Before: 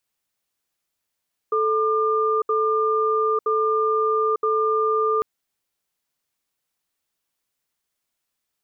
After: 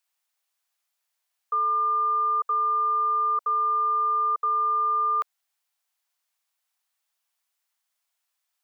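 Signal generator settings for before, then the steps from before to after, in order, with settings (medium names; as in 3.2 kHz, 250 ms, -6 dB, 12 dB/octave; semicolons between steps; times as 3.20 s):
cadence 437 Hz, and 1.2 kHz, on 0.90 s, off 0.07 s, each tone -20.5 dBFS 3.70 s
steep high-pass 640 Hz 36 dB/octave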